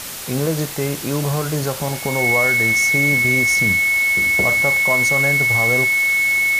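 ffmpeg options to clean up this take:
-af "bandreject=f=2.2k:w=30,afftdn=nr=30:nf=-25"

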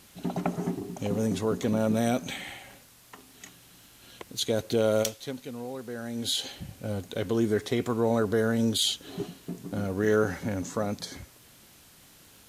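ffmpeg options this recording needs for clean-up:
-af "adeclick=t=4,afftdn=nr=19:nf=-55"

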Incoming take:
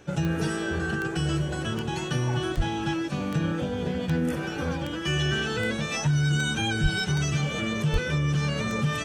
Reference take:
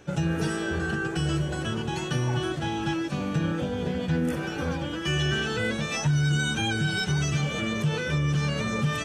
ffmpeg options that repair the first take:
-filter_complex "[0:a]adeclick=t=4,asplit=3[a][b][c];[a]afade=t=out:st=2.56:d=0.02[d];[b]highpass=f=140:w=0.5412,highpass=f=140:w=1.3066,afade=t=in:st=2.56:d=0.02,afade=t=out:st=2.68:d=0.02[e];[c]afade=t=in:st=2.68:d=0.02[f];[d][e][f]amix=inputs=3:normalize=0,asplit=3[g][h][i];[g]afade=t=out:st=6.82:d=0.02[j];[h]highpass=f=140:w=0.5412,highpass=f=140:w=1.3066,afade=t=in:st=6.82:d=0.02,afade=t=out:st=6.94:d=0.02[k];[i]afade=t=in:st=6.94:d=0.02[l];[j][k][l]amix=inputs=3:normalize=0,asplit=3[m][n][o];[m]afade=t=out:st=7.92:d=0.02[p];[n]highpass=f=140:w=0.5412,highpass=f=140:w=1.3066,afade=t=in:st=7.92:d=0.02,afade=t=out:st=8.04:d=0.02[q];[o]afade=t=in:st=8.04:d=0.02[r];[p][q][r]amix=inputs=3:normalize=0"

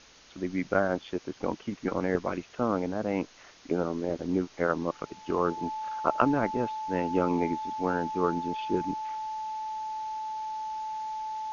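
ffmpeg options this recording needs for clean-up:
-af "bandreject=f=870:w=30,afftdn=nr=23:nf=-52"

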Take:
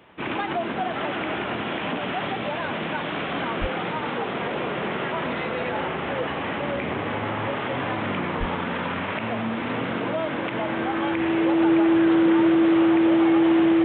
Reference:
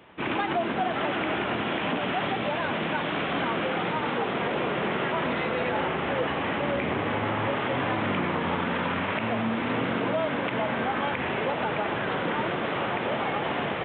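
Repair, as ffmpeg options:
-filter_complex "[0:a]bandreject=f=330:w=30,asplit=3[a][b][c];[a]afade=t=out:st=3.6:d=0.02[d];[b]highpass=f=140:w=0.5412,highpass=f=140:w=1.3066,afade=t=in:st=3.6:d=0.02,afade=t=out:st=3.72:d=0.02[e];[c]afade=t=in:st=3.72:d=0.02[f];[d][e][f]amix=inputs=3:normalize=0,asplit=3[g][h][i];[g]afade=t=out:st=8.39:d=0.02[j];[h]highpass=f=140:w=0.5412,highpass=f=140:w=1.3066,afade=t=in:st=8.39:d=0.02,afade=t=out:st=8.51:d=0.02[k];[i]afade=t=in:st=8.51:d=0.02[l];[j][k][l]amix=inputs=3:normalize=0"

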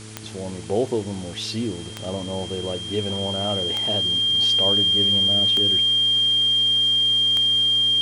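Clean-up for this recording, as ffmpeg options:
-af "adeclick=t=4,bandreject=f=108.6:t=h:w=4,bandreject=f=217.2:t=h:w=4,bandreject=f=325.8:t=h:w=4,bandreject=f=434.4:t=h:w=4,bandreject=f=3.2k:w=30,afwtdn=0.0089"

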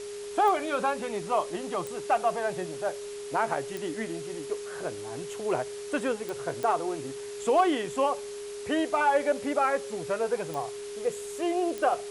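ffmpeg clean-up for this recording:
-af "adeclick=t=4,bandreject=f=410:w=30,afwtdn=0.0056"

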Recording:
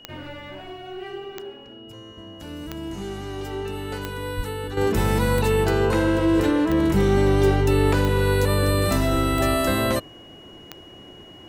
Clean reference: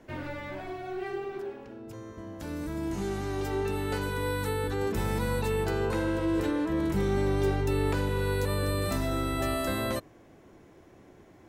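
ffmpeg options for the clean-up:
-filter_complex "[0:a]adeclick=t=4,bandreject=f=2.9k:w=30,asplit=3[a][b][c];[a]afade=t=out:st=4.36:d=0.02[d];[b]highpass=f=140:w=0.5412,highpass=f=140:w=1.3066,afade=t=in:st=4.36:d=0.02,afade=t=out:st=4.48:d=0.02[e];[c]afade=t=in:st=4.48:d=0.02[f];[d][e][f]amix=inputs=3:normalize=0,asplit=3[g][h][i];[g]afade=t=out:st=9.13:d=0.02[j];[h]highpass=f=140:w=0.5412,highpass=f=140:w=1.3066,afade=t=in:st=9.13:d=0.02,afade=t=out:st=9.25:d=0.02[k];[i]afade=t=in:st=9.25:d=0.02[l];[j][k][l]amix=inputs=3:normalize=0,asetnsamples=n=441:p=0,asendcmd='4.77 volume volume -8.5dB',volume=0dB"

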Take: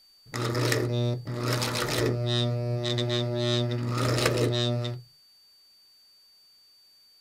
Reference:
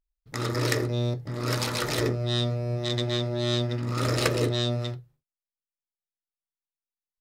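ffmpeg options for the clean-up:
-af "bandreject=f=4.6k:w=30,agate=range=-21dB:threshold=-51dB"

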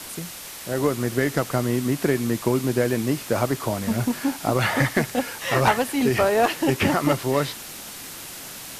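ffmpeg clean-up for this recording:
-af "adeclick=t=4,afwtdn=0.016"

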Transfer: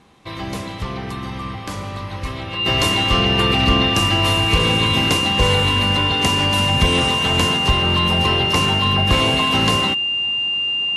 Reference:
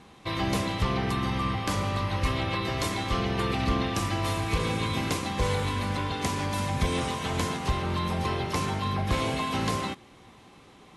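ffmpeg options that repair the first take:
-af "bandreject=f=2.8k:w=30,asetnsamples=n=441:p=0,asendcmd='2.66 volume volume -9.5dB',volume=0dB"

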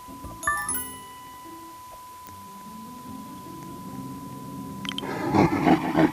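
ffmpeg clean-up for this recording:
-af "adeclick=t=4,bandreject=f=1k:w=30,afwtdn=0.0028"

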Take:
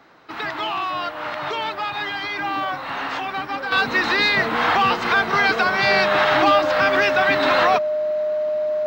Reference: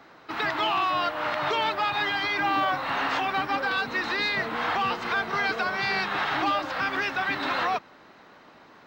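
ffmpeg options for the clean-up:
-af "bandreject=f=610:w=30,asetnsamples=n=441:p=0,asendcmd='3.72 volume volume -8.5dB',volume=0dB"

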